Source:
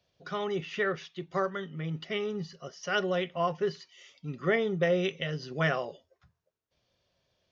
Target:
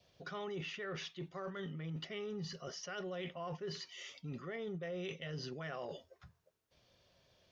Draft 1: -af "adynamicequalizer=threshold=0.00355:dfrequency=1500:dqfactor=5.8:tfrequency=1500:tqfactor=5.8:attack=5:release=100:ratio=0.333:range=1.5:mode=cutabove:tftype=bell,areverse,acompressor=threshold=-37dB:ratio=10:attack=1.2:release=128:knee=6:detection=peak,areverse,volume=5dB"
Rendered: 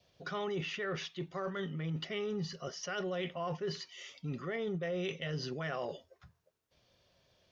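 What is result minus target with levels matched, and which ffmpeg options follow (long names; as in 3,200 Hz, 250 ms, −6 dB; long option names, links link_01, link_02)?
downward compressor: peak gain reduction −6 dB
-af "adynamicequalizer=threshold=0.00355:dfrequency=1500:dqfactor=5.8:tfrequency=1500:tqfactor=5.8:attack=5:release=100:ratio=0.333:range=1.5:mode=cutabove:tftype=bell,areverse,acompressor=threshold=-43.5dB:ratio=10:attack=1.2:release=128:knee=6:detection=peak,areverse,volume=5dB"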